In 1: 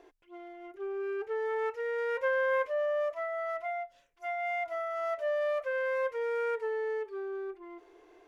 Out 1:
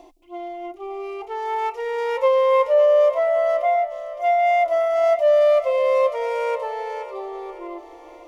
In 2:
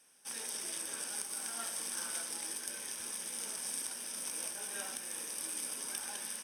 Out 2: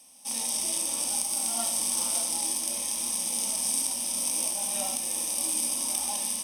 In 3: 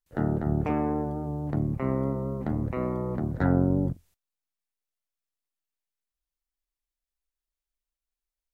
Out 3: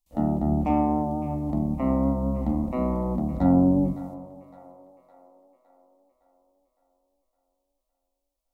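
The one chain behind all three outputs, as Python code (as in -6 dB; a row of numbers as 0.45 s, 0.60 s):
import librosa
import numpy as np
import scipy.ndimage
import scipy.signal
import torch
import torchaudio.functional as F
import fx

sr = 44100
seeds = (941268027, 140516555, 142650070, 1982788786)

y = fx.hpss(x, sr, part='harmonic', gain_db=9)
y = fx.peak_eq(y, sr, hz=64.0, db=13.0, octaves=0.24)
y = fx.fixed_phaser(y, sr, hz=420.0, stages=6)
y = fx.echo_split(y, sr, split_hz=460.0, low_ms=165, high_ms=561, feedback_pct=52, wet_db=-14.5)
y = y * 10.0 ** (-9 / 20.0) / np.max(np.abs(y))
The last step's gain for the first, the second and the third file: +8.0 dB, +6.5 dB, -1.0 dB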